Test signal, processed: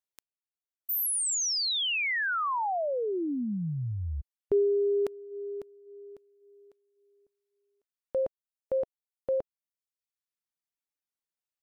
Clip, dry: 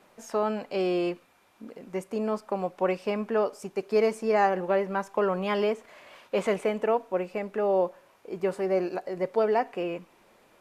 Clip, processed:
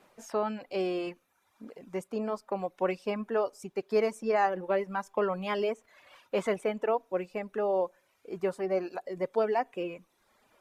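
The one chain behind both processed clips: reverb removal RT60 0.96 s; gain -2.5 dB

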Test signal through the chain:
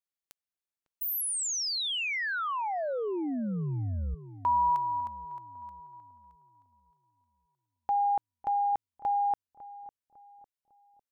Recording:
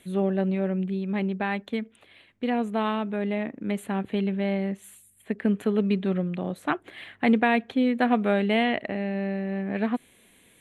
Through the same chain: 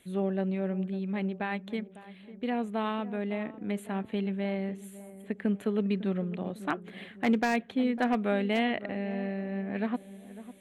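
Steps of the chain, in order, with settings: wavefolder -12 dBFS; darkening echo 0.552 s, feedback 46%, low-pass 1000 Hz, level -14.5 dB; gain -5 dB

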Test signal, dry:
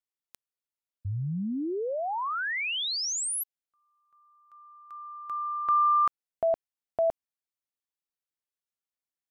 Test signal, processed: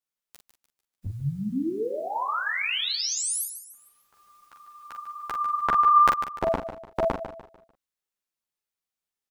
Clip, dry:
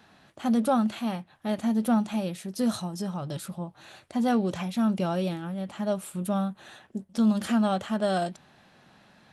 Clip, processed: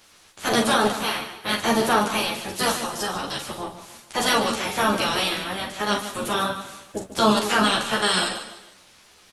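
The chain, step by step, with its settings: spectral limiter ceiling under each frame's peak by 29 dB; doubler 43 ms -6.5 dB; feedback echo 0.148 s, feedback 37%, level -10.5 dB; ensemble effect; gain +6 dB

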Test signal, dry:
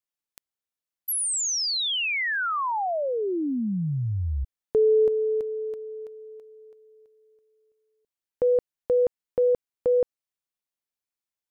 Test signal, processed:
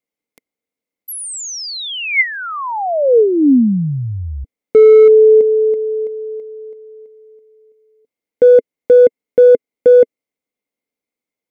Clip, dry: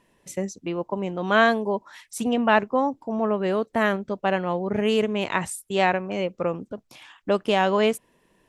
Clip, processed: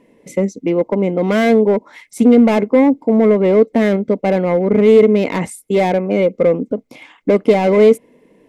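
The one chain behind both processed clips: hard clip -21.5 dBFS; small resonant body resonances 270/450/2100 Hz, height 18 dB, ringing for 25 ms

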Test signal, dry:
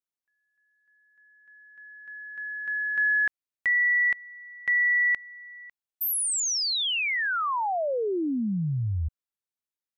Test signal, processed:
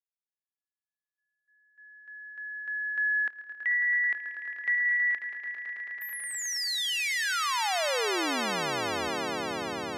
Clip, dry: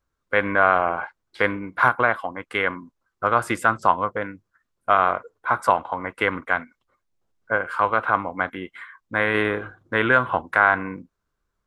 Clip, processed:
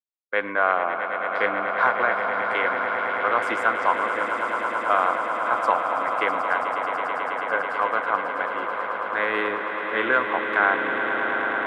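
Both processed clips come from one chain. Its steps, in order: expander -46 dBFS; three-band isolator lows -20 dB, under 250 Hz, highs -13 dB, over 6900 Hz; on a send: swelling echo 0.109 s, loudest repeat 8, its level -10.5 dB; on the sum: gain -3.5 dB

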